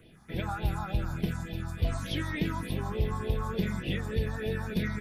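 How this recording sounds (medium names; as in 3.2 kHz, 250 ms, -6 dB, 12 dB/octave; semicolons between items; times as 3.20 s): phasing stages 4, 3.4 Hz, lowest notch 450–1300 Hz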